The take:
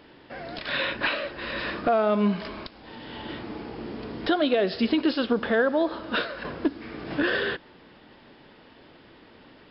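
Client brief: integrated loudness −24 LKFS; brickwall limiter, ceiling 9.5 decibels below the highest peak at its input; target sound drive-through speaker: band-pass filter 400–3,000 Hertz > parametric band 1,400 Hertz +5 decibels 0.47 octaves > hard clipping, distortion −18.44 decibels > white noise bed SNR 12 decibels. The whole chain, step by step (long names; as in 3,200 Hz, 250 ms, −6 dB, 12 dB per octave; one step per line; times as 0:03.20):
brickwall limiter −20.5 dBFS
band-pass filter 400–3,000 Hz
parametric band 1,400 Hz +5 dB 0.47 octaves
hard clipping −24 dBFS
white noise bed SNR 12 dB
level +9.5 dB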